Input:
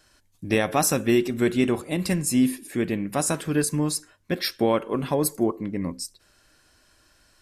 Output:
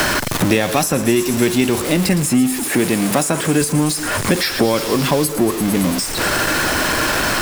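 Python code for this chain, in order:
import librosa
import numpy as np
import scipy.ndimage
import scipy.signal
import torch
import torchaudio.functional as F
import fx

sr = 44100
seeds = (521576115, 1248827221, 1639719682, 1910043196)

y = x + 0.5 * 10.0 ** (-25.0 / 20.0) * np.sign(x)
y = fx.highpass(y, sr, hz=170.0, slope=6, at=(2.63, 3.61))
y = fx.echo_wet_highpass(y, sr, ms=112, feedback_pct=79, hz=5000.0, wet_db=-10)
y = fx.band_squash(y, sr, depth_pct=100)
y = y * 10.0 ** (4.5 / 20.0)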